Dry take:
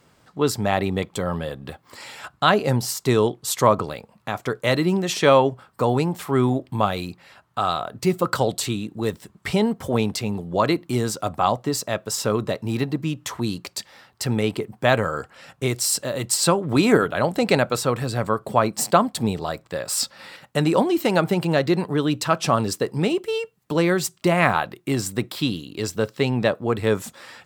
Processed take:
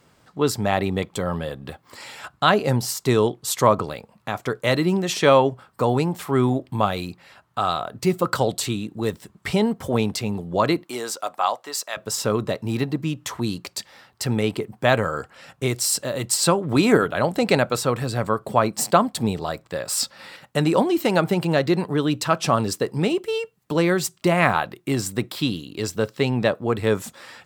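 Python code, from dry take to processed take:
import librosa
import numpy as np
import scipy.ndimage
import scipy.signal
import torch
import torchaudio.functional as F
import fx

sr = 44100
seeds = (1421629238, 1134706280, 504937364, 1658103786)

y = fx.highpass(x, sr, hz=fx.line((10.83, 420.0), (11.96, 980.0)), slope=12, at=(10.83, 11.96), fade=0.02)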